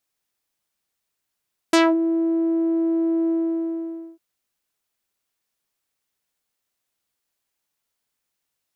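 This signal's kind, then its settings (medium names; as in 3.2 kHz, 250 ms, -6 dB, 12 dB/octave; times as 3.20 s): synth note saw E4 12 dB/octave, low-pass 350 Hz, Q 1.3, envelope 5 oct, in 0.21 s, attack 4.8 ms, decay 0.24 s, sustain -7.5 dB, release 0.89 s, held 1.56 s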